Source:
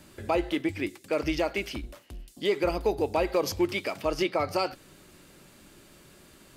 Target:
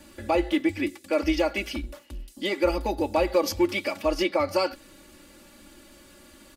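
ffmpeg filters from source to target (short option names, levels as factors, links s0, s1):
-af "aecho=1:1:3.5:0.94"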